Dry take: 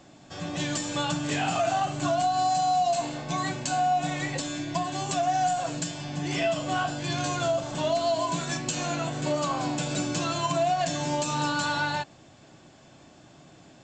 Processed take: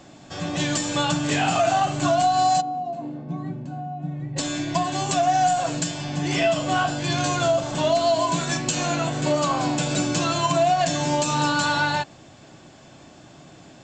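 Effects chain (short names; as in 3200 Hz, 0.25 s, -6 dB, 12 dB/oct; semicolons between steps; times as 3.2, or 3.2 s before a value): 2.6–4.36 band-pass 300 Hz -> 120 Hz, Q 1.4; gain +5.5 dB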